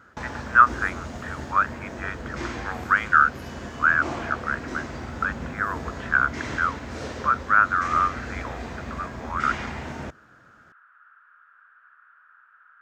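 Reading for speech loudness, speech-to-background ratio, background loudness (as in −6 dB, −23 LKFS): −23.5 LKFS, 11.5 dB, −35.0 LKFS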